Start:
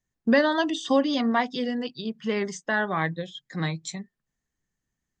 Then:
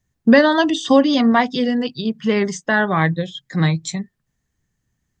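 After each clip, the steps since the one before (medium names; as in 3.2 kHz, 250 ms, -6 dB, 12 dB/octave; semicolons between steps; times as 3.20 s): peaking EQ 95 Hz +9 dB 1.6 oct; trim +7.5 dB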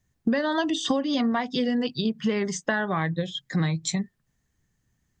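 compression 12:1, threshold -21 dBFS, peak gain reduction 15 dB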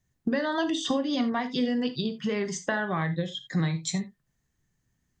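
gated-style reverb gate 100 ms flat, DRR 9.5 dB; trim -3 dB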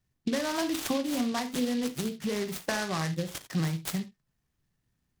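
delay time shaken by noise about 3.4 kHz, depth 0.076 ms; trim -2.5 dB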